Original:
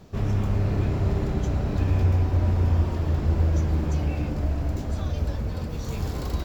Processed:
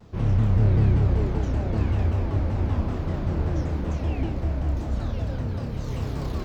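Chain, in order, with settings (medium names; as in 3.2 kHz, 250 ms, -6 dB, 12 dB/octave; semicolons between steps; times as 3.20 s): treble shelf 6.3 kHz -11 dB; on a send: flutter echo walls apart 5.2 m, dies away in 0.46 s; on the sum: vibrato with a chosen wave saw down 5.2 Hz, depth 250 cents; trim -2 dB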